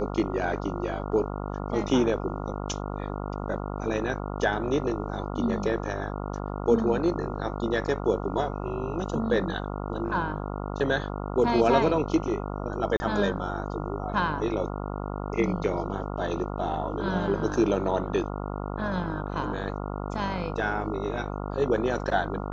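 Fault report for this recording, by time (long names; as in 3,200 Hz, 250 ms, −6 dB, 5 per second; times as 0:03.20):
mains buzz 50 Hz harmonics 28 −33 dBFS
0:12.97–0:13.00: drop-out 30 ms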